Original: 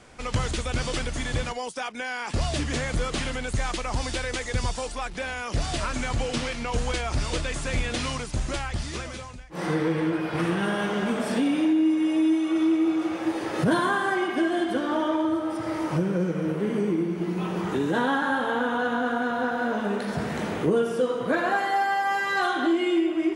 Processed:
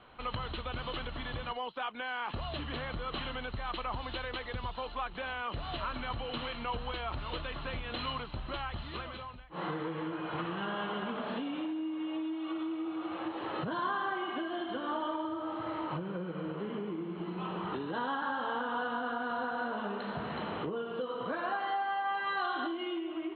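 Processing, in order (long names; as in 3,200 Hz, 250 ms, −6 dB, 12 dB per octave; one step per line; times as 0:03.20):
downward compressor, threshold −26 dBFS, peak gain reduction 8.5 dB
Chebyshev low-pass with heavy ripple 4,200 Hz, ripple 9 dB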